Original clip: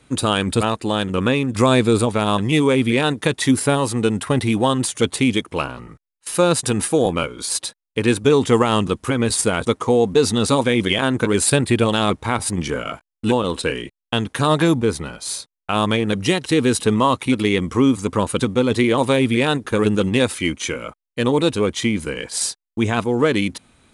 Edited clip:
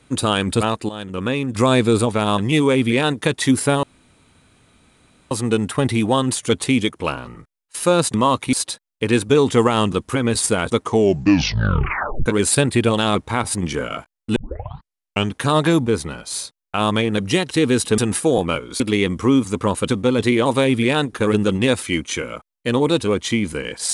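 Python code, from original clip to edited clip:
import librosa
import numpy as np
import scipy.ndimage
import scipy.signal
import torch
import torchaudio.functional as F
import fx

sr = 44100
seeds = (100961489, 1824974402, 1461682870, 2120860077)

y = fx.edit(x, sr, fx.fade_in_from(start_s=0.89, length_s=1.08, curve='qsin', floor_db=-13.5),
    fx.insert_room_tone(at_s=3.83, length_s=1.48),
    fx.swap(start_s=6.66, length_s=0.82, other_s=16.93, other_length_s=0.39),
    fx.tape_stop(start_s=9.8, length_s=1.41),
    fx.tape_start(start_s=13.31, length_s=0.96), tone=tone)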